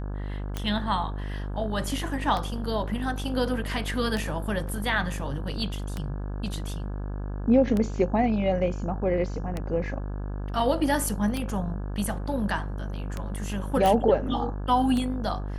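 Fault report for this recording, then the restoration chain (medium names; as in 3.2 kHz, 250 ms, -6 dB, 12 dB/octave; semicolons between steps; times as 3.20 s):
buzz 50 Hz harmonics 34 -32 dBFS
tick 33 1/3 rpm -16 dBFS
13.86 s: pop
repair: de-click; de-hum 50 Hz, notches 34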